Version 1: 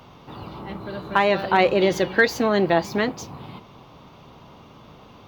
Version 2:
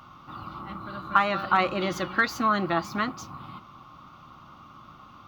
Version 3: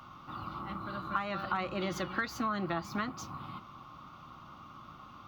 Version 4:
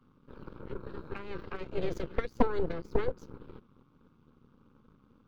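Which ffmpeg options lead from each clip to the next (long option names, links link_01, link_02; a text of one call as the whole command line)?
ffmpeg -i in.wav -af "superequalizer=7b=0.282:8b=0.631:10b=3.98,volume=-5.5dB" out.wav
ffmpeg -i in.wav -filter_complex "[0:a]acrossover=split=150[link_01][link_02];[link_02]acompressor=threshold=-31dB:ratio=3[link_03];[link_01][link_03]amix=inputs=2:normalize=0,volume=-2dB" out.wav
ffmpeg -i in.wav -af "lowshelf=frequency=370:width_type=q:width=3:gain=12.5,aeval=exprs='0.447*(cos(1*acos(clip(val(0)/0.447,-1,1)))-cos(1*PI/2))+0.178*(cos(3*acos(clip(val(0)/0.447,-1,1)))-cos(3*PI/2))+0.224*(cos(4*acos(clip(val(0)/0.447,-1,1)))-cos(4*PI/2))':channel_layout=same,volume=-9dB" out.wav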